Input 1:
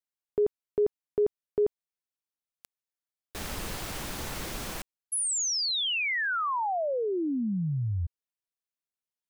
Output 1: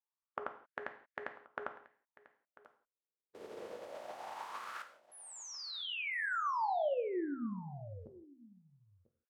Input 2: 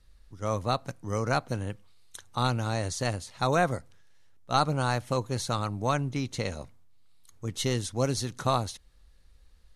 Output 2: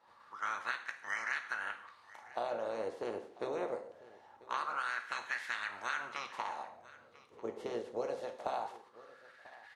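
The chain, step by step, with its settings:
ceiling on every frequency bin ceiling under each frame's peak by 28 dB
LFO wah 0.23 Hz 420–1,800 Hz, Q 5.4
downward compressor 6 to 1, threshold −41 dBFS
single-tap delay 994 ms −20 dB
reverb whose tail is shaped and stops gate 200 ms falling, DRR 6 dB
level +7 dB

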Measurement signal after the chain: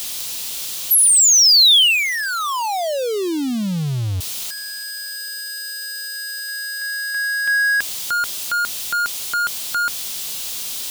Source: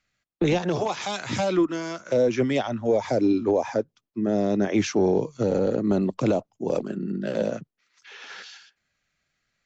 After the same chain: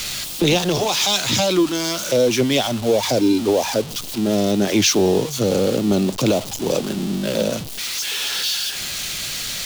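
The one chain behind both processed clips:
converter with a step at zero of −30.5 dBFS
high shelf with overshoot 2,500 Hz +8.5 dB, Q 1.5
level +3.5 dB

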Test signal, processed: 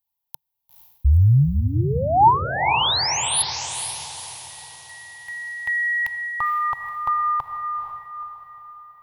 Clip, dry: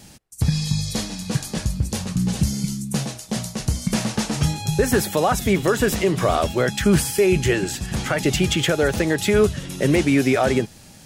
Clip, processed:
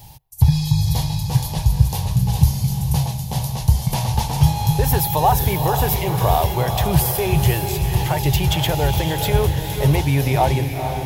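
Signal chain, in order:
drawn EQ curve 140 Hz 0 dB, 210 Hz −20 dB, 620 Hz −10 dB, 900 Hz +4 dB, 1,300 Hz −18 dB, 3,500 Hz −7 dB, 8,400 Hz −14 dB, 13,000 Hz +4 dB
feedback delay with all-pass diffusion 474 ms, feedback 46%, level −6.5 dB
level +8 dB

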